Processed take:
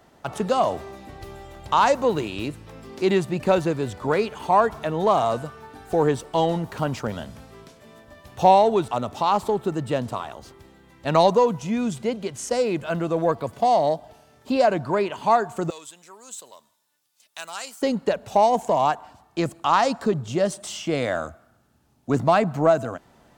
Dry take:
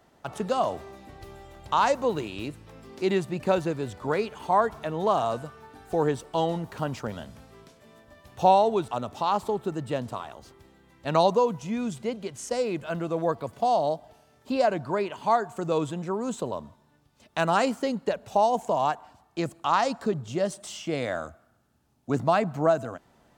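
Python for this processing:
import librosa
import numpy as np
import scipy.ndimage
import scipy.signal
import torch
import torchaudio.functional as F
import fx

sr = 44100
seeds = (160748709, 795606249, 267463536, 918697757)

p1 = 10.0 ** (-23.0 / 20.0) * np.tanh(x / 10.0 ** (-23.0 / 20.0))
p2 = x + (p1 * 10.0 ** (-10.0 / 20.0))
p3 = fx.differentiator(p2, sr, at=(15.7, 17.82))
y = p3 * 10.0 ** (3.0 / 20.0)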